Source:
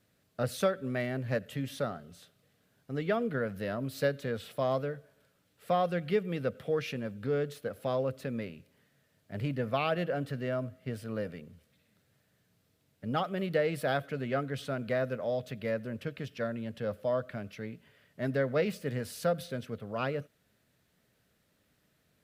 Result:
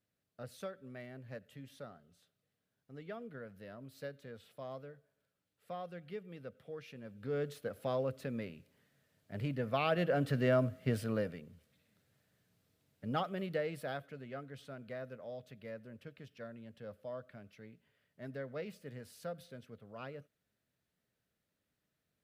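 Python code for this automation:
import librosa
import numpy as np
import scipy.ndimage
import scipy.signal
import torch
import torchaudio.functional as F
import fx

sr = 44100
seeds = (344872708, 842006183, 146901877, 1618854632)

y = fx.gain(x, sr, db=fx.line((6.89, -15.5), (7.45, -4.0), (9.69, -4.0), (10.42, 4.0), (11.0, 4.0), (11.41, -4.0), (13.19, -4.0), (14.25, -13.5)))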